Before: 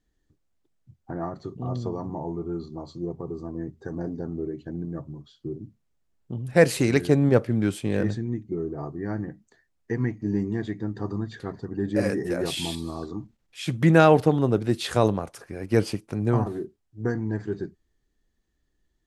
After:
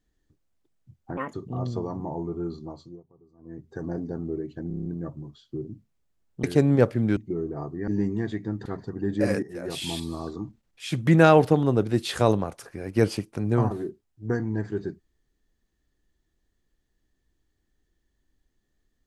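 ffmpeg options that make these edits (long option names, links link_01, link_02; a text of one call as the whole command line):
ffmpeg -i in.wav -filter_complex "[0:a]asplit=16[link_01][link_02][link_03][link_04][link_05][link_06][link_07][link_08][link_09][link_10][link_11][link_12][link_13][link_14][link_15][link_16];[link_01]atrim=end=1.174[link_17];[link_02]atrim=start=1.17:end=1.43,asetpts=PTS-STARTPTS,asetrate=69237,aresample=44100,atrim=end_sample=7303,asetpts=PTS-STARTPTS[link_18];[link_03]atrim=start=1.426:end=3.12,asetpts=PTS-STARTPTS,afade=type=out:start_time=1.274:duration=0.42:silence=0.0630957[link_19];[link_04]atrim=start=3.12:end=3.47,asetpts=PTS-STARTPTS,volume=-24dB[link_20];[link_05]atrim=start=3.47:end=4.802,asetpts=PTS-STARTPTS,afade=type=in:duration=0.42:silence=0.0630957[link_21];[link_06]atrim=start=4.768:end=4.802[link_22];[link_07]atrim=start=4.768:end=4.802[link_23];[link_08]atrim=start=4.768:end=4.802[link_24];[link_09]atrim=start=4.768:end=4.802[link_25];[link_10]atrim=start=4.768:end=4.802[link_26];[link_11]atrim=start=4.768:end=6.352[link_27];[link_12]atrim=start=6.968:end=7.702[link_28];[link_13]atrim=start=8.378:end=9.092[link_29];[link_14]atrim=start=10.228:end=11.012[link_30];[link_15]atrim=start=11.408:end=12.18,asetpts=PTS-STARTPTS,afade=type=out:start_time=0.768:duration=0.004:curve=hsin:silence=0.141254[link_31];[link_16]atrim=start=12.18,asetpts=PTS-STARTPTS,afade=type=in:duration=0.56:silence=0.141254[link_32];[link_17][link_18]acrossfade=duration=0.004:curve1=hsin:curve2=hsin[link_33];[link_19][link_20][link_21]concat=n=3:v=0:a=1[link_34];[link_33][link_34]acrossfade=duration=0.004:curve1=hsin:curve2=hsin[link_35];[link_35][link_22]acrossfade=duration=0.004:curve1=hsin:curve2=hsin[link_36];[link_36][link_23]acrossfade=duration=0.004:curve1=hsin:curve2=hsin[link_37];[link_37][link_24]acrossfade=duration=0.004:curve1=hsin:curve2=hsin[link_38];[link_38][link_25]acrossfade=duration=0.004:curve1=hsin:curve2=hsin[link_39];[link_39][link_26]acrossfade=duration=0.004:curve1=hsin:curve2=hsin[link_40];[link_40][link_27]acrossfade=duration=0.004:curve1=hsin:curve2=hsin[link_41];[link_41][link_28]acrossfade=duration=0.004:curve1=hsin:curve2=hsin[link_42];[link_42][link_29]acrossfade=duration=0.004:curve1=hsin:curve2=hsin[link_43];[link_43][link_30]acrossfade=duration=0.004:curve1=hsin:curve2=hsin[link_44];[link_31][link_32]concat=n=2:v=0:a=1[link_45];[link_44][link_45]acrossfade=duration=0.004:curve1=hsin:curve2=hsin" out.wav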